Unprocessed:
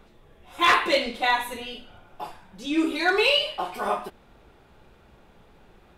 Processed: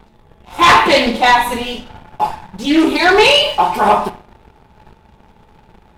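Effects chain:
parametric band 880 Hz +11 dB 0.27 octaves
on a send at −12.5 dB: convolution reverb RT60 0.70 s, pre-delay 5 ms
on the sum: leveller curve on the samples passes 2
parametric band 95 Hz +7.5 dB 2.6 octaves
highs frequency-modulated by the lows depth 0.18 ms
level +4.5 dB

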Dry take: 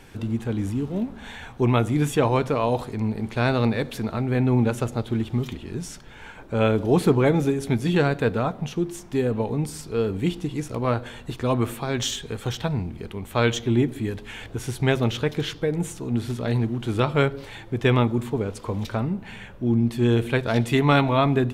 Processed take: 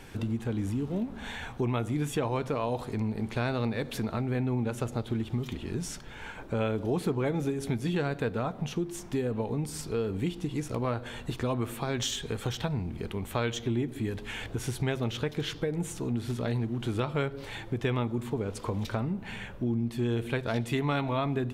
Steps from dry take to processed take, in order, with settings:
downward compressor 3 to 1, threshold −29 dBFS, peak gain reduction 12 dB

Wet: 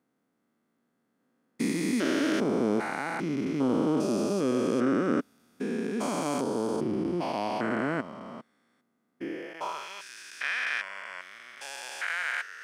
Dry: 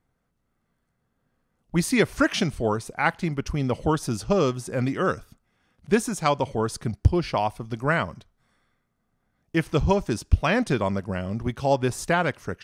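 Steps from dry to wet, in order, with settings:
spectrum averaged block by block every 400 ms
high-pass filter sweep 260 Hz → 1,800 Hz, 0:09.21–0:09.88

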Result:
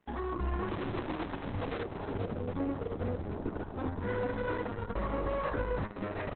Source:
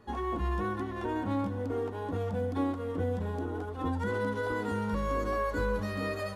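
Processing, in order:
0:04.72–0:05.36: notch filter 2,300 Hz, Q 6.4
hum removal 208.5 Hz, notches 28
in parallel at −0.5 dB: brickwall limiter −32 dBFS, peak gain reduction 11.5 dB
on the sum: dead-zone distortion −47.5 dBFS
tube saturation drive 27 dB, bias 0.25
0:00.68–0:01.83: comparator with hysteresis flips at −42 dBFS
high-frequency loss of the air 220 metres
echo with shifted repeats 431 ms, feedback 56%, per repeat −53 Hz, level −11.5 dB
Opus 6 kbit/s 48,000 Hz

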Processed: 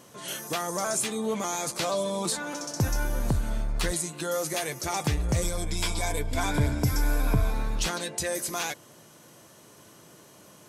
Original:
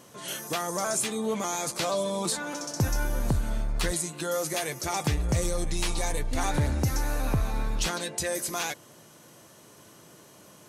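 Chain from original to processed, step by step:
0:05.42–0:07.54: EQ curve with evenly spaced ripples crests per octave 1.7, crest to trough 10 dB

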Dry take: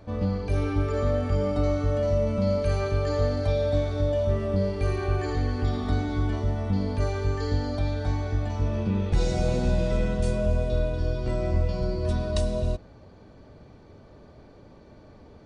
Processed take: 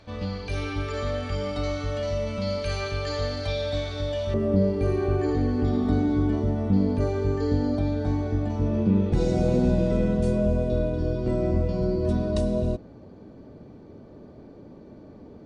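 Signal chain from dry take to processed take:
parametric band 3,600 Hz +13 dB 2.5 octaves, from 0:04.34 270 Hz
level −5 dB

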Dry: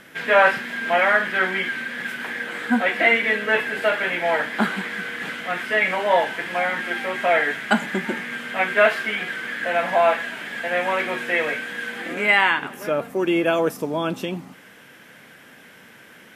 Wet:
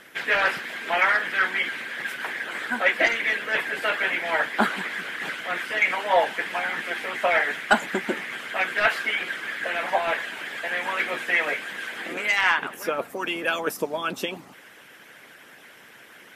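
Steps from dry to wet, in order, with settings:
low-shelf EQ 240 Hz −8.5 dB
soft clipping −7 dBFS, distortion −23 dB
harmonic and percussive parts rebalanced harmonic −16 dB
level +4.5 dB

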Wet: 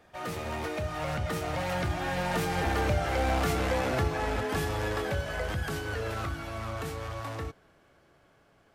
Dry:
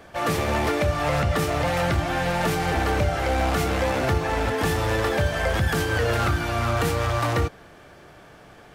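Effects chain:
source passing by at 0:03.28, 17 m/s, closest 25 metres
level −4.5 dB

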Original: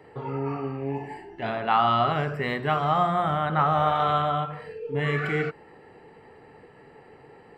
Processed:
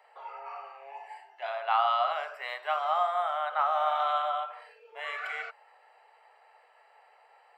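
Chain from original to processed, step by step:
elliptic high-pass filter 620 Hz, stop band 60 dB
parametric band 1,800 Hz −5 dB 0.26 octaves
level −3.5 dB

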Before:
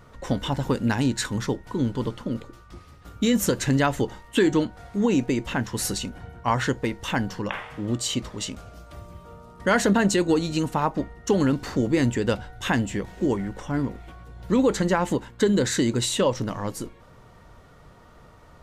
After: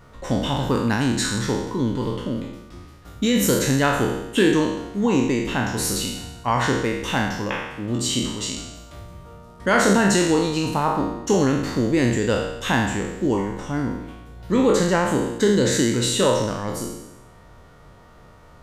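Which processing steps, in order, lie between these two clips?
peak hold with a decay on every bin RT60 0.96 s

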